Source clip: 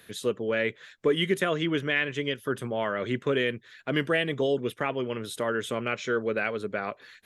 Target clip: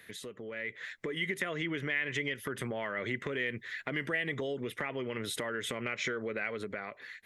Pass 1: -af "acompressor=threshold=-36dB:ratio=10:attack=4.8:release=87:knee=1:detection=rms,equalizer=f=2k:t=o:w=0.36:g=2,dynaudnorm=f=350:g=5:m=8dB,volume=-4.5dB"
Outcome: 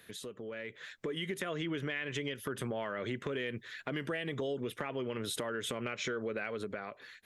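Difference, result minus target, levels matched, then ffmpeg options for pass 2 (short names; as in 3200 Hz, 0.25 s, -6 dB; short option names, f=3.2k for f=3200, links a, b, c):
2000 Hz band -3.5 dB
-af "acompressor=threshold=-36dB:ratio=10:attack=4.8:release=87:knee=1:detection=rms,equalizer=f=2k:t=o:w=0.36:g=12.5,dynaudnorm=f=350:g=5:m=8dB,volume=-4.5dB"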